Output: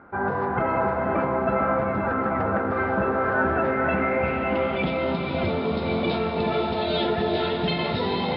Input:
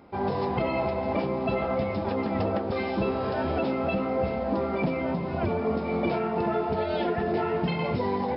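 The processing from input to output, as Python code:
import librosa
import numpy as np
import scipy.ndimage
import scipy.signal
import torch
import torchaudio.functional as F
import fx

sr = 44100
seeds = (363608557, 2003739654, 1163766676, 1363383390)

y = fx.filter_sweep_lowpass(x, sr, from_hz=1500.0, to_hz=3800.0, start_s=3.46, end_s=5.03, q=6.8)
y = fx.echo_diffused(y, sr, ms=501, feedback_pct=41, wet_db=-4.0)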